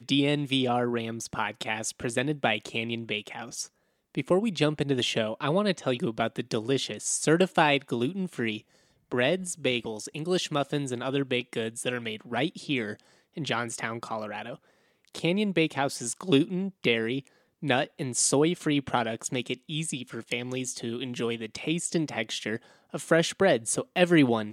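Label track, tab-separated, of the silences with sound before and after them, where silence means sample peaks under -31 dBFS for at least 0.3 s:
3.640000	4.150000	silence
8.580000	9.120000	silence
12.930000	13.370000	silence
14.540000	15.150000	silence
17.190000	17.630000	silence
22.560000	22.940000	silence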